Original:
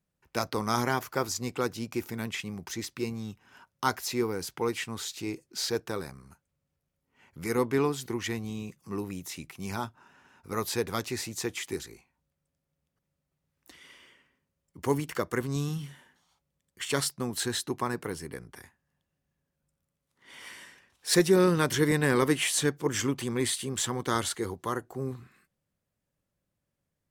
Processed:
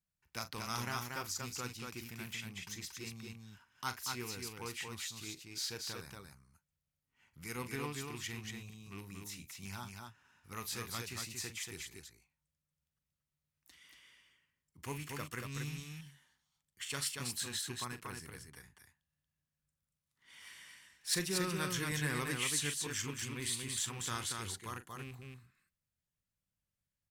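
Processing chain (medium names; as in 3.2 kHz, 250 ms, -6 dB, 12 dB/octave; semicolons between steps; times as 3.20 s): rattle on loud lows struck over -32 dBFS, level -32 dBFS; peaking EQ 430 Hz -13 dB 2.5 oct; loudspeakers at several distances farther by 14 m -12 dB, 80 m -4 dB; trim -6.5 dB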